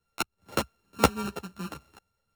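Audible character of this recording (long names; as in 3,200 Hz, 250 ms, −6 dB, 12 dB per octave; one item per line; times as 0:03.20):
a buzz of ramps at a fixed pitch in blocks of 32 samples
a shimmering, thickened sound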